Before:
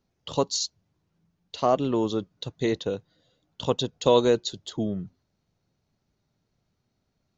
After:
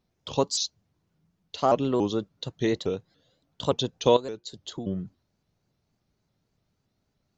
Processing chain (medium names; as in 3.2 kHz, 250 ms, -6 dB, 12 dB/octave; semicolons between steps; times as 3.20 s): 4.16–4.87 s: compression 8:1, threshold -32 dBFS, peak gain reduction 15.5 dB; vibrato with a chosen wave saw up 3.5 Hz, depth 160 cents